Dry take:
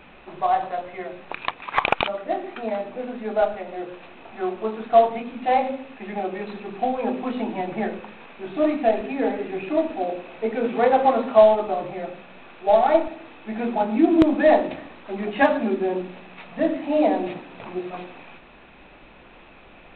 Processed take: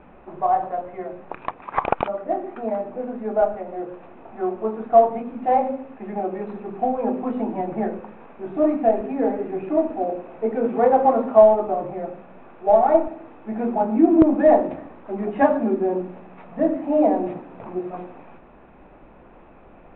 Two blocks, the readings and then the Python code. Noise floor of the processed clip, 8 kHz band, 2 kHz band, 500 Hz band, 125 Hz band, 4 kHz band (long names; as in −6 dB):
−48 dBFS, can't be measured, −7.5 dB, +1.5 dB, +2.0 dB, below −15 dB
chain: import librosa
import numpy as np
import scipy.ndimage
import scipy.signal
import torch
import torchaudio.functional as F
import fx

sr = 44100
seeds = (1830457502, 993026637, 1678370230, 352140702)

y = scipy.signal.sosfilt(scipy.signal.butter(2, 1100.0, 'lowpass', fs=sr, output='sos'), x)
y = F.gain(torch.from_numpy(y), 2.0).numpy()